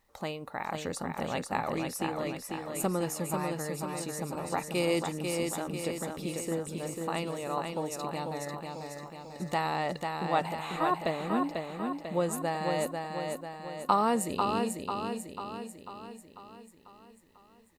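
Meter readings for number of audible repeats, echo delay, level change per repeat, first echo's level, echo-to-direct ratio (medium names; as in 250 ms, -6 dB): 6, 494 ms, -5.0 dB, -4.5 dB, -3.0 dB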